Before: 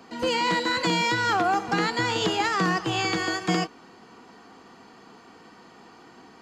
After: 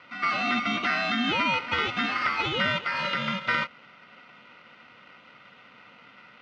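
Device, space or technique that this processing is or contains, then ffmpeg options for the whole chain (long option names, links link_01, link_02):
ring modulator pedal into a guitar cabinet: -af "aeval=exprs='val(0)*sgn(sin(2*PI*1700*n/s))':channel_layout=same,highpass=100,equalizer=frequency=220:width_type=q:width=4:gain=7,equalizer=frequency=800:width_type=q:width=4:gain=-5,equalizer=frequency=1200:width_type=q:width=4:gain=4,lowpass=frequency=3500:width=0.5412,lowpass=frequency=3500:width=1.3066,volume=-1.5dB"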